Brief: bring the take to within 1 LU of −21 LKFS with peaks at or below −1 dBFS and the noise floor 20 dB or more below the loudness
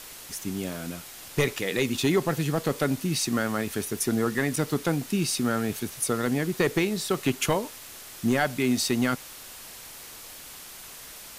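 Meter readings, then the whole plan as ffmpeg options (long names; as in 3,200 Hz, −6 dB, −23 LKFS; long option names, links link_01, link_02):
background noise floor −44 dBFS; target noise floor −47 dBFS; integrated loudness −27.0 LKFS; sample peak −14.5 dBFS; target loudness −21.0 LKFS
→ -af "afftdn=noise_reduction=6:noise_floor=-44"
-af "volume=6dB"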